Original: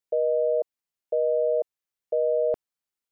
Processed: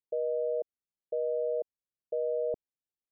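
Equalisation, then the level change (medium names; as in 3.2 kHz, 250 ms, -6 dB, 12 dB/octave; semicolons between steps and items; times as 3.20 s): Gaussian low-pass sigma 13 samples; -3.0 dB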